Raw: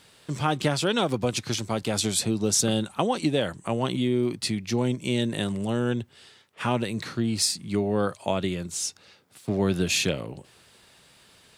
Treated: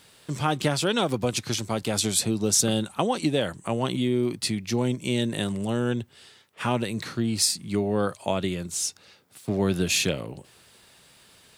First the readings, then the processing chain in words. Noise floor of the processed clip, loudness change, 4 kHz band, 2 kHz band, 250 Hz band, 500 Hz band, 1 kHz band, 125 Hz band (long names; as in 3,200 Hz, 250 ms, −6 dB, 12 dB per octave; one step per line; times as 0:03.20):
−56 dBFS, +0.5 dB, +0.5 dB, 0.0 dB, 0.0 dB, 0.0 dB, 0.0 dB, 0.0 dB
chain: high-shelf EQ 11,000 Hz +7.5 dB